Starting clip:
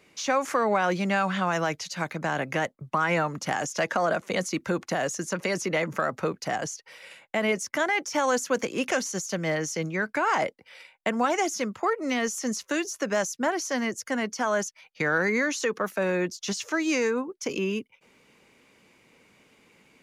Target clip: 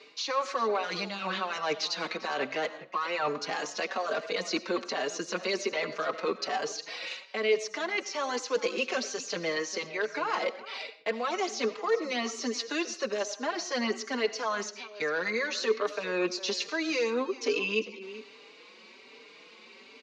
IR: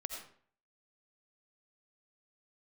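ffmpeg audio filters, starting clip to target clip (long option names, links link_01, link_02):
-filter_complex "[0:a]bass=frequency=250:gain=-13,treble=frequency=4000:gain=8,areverse,acompressor=threshold=-33dB:ratio=12,areverse,asoftclip=type=hard:threshold=-30dB,highpass=160,equalizer=frequency=230:width_type=q:width=4:gain=7,equalizer=frequency=430:width_type=q:width=4:gain=9,equalizer=frequency=1100:width_type=q:width=4:gain=6,equalizer=frequency=2600:width_type=q:width=4:gain=5,equalizer=frequency=4100:width_type=q:width=4:gain=10,lowpass=frequency=5200:width=0.5412,lowpass=frequency=5200:width=1.3066,aecho=1:1:400:0.141,asplit=2[link_01][link_02];[1:a]atrim=start_sample=2205[link_03];[link_02][link_03]afir=irnorm=-1:irlink=0,volume=-7dB[link_04];[link_01][link_04]amix=inputs=2:normalize=0,asplit=2[link_05][link_06];[link_06]adelay=4.6,afreqshift=1.2[link_07];[link_05][link_07]amix=inputs=2:normalize=1,volume=4dB"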